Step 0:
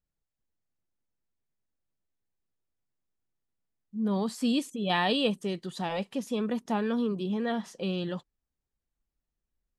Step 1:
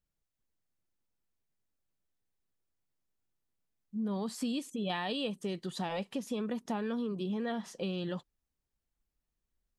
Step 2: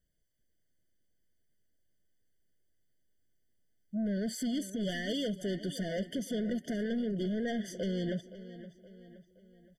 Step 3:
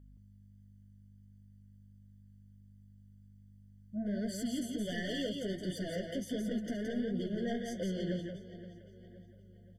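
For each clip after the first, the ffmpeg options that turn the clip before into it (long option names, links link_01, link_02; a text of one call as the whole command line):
ffmpeg -i in.wav -af "acompressor=threshold=-32dB:ratio=5" out.wav
ffmpeg -i in.wav -filter_complex "[0:a]asoftclip=type=tanh:threshold=-36.5dB,asplit=2[link_01][link_02];[link_02]adelay=520,lowpass=frequency=4500:poles=1,volume=-14.5dB,asplit=2[link_03][link_04];[link_04]adelay=520,lowpass=frequency=4500:poles=1,volume=0.48,asplit=2[link_05][link_06];[link_06]adelay=520,lowpass=frequency=4500:poles=1,volume=0.48,asplit=2[link_07][link_08];[link_08]adelay=520,lowpass=frequency=4500:poles=1,volume=0.48[link_09];[link_01][link_03][link_05][link_07][link_09]amix=inputs=5:normalize=0,afftfilt=real='re*eq(mod(floor(b*sr/1024/720),2),0)':imag='im*eq(mod(floor(b*sr/1024/720),2),0)':win_size=1024:overlap=0.75,volume=7dB" out.wav
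ffmpeg -i in.wav -filter_complex "[0:a]flanger=delay=5.7:depth=7.4:regen=-24:speed=1.4:shape=sinusoidal,aeval=exprs='val(0)+0.00178*(sin(2*PI*50*n/s)+sin(2*PI*2*50*n/s)/2+sin(2*PI*3*50*n/s)/3+sin(2*PI*4*50*n/s)/4+sin(2*PI*5*50*n/s)/5)':channel_layout=same,asplit=2[link_01][link_02];[link_02]aecho=0:1:170:0.596[link_03];[link_01][link_03]amix=inputs=2:normalize=0" out.wav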